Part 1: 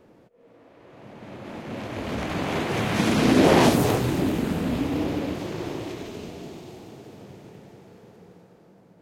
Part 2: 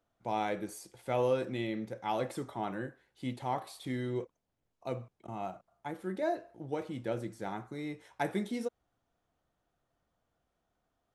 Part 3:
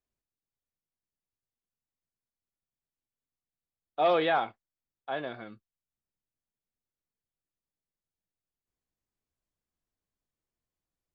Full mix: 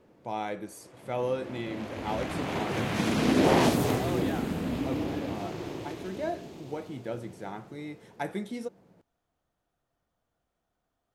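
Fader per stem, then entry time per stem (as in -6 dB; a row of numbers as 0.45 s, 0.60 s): -5.5 dB, -0.5 dB, -12.5 dB; 0.00 s, 0.00 s, 0.00 s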